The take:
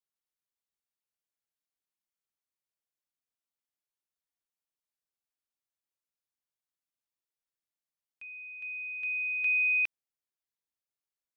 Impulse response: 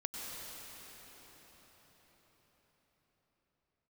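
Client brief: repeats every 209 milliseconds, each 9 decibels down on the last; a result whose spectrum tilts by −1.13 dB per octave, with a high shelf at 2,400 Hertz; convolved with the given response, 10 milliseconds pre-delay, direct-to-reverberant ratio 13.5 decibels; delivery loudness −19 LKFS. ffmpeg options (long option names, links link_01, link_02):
-filter_complex "[0:a]highshelf=frequency=2400:gain=7,aecho=1:1:209|418|627|836:0.355|0.124|0.0435|0.0152,asplit=2[link_01][link_02];[1:a]atrim=start_sample=2205,adelay=10[link_03];[link_02][link_03]afir=irnorm=-1:irlink=0,volume=-15dB[link_04];[link_01][link_04]amix=inputs=2:normalize=0,volume=7dB"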